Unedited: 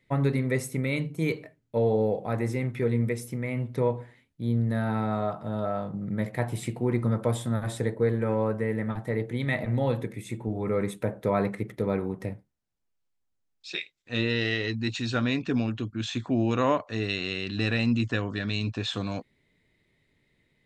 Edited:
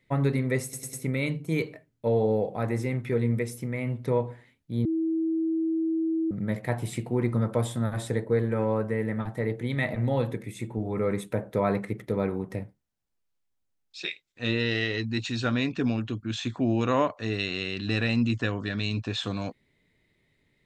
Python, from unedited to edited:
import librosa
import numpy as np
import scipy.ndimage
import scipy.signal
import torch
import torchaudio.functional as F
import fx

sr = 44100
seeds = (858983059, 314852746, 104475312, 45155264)

y = fx.edit(x, sr, fx.stutter(start_s=0.63, slice_s=0.1, count=4),
    fx.bleep(start_s=4.55, length_s=1.46, hz=324.0, db=-23.5), tone=tone)